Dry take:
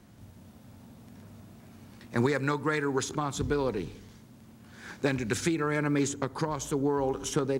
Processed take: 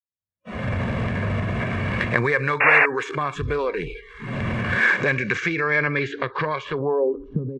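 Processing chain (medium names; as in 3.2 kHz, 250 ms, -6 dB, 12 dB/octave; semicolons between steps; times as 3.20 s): median filter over 9 samples; recorder AGC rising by 41 dB/s; spectral noise reduction 30 dB; expander -39 dBFS; treble shelf 3.2 kHz +11 dB; comb 1.8 ms, depth 54%; transient shaper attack -3 dB, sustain +4 dB; low-pass sweep 9 kHz -> 4.1 kHz, 4.67–6.10 s; painted sound noise, 2.60–2.86 s, 420–2800 Hz -23 dBFS; low-pass sweep 2.1 kHz -> 210 Hz, 6.69–7.21 s; trim +2.5 dB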